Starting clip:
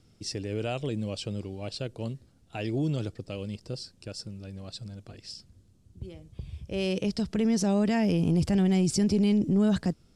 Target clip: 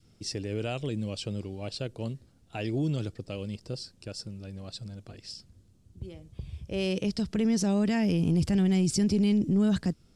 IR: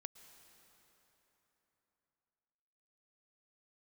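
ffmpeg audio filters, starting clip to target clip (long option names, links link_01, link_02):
-af "adynamicequalizer=threshold=0.01:dfrequency=690:dqfactor=0.9:tfrequency=690:tqfactor=0.9:attack=5:release=100:ratio=0.375:range=2.5:mode=cutabove:tftype=bell"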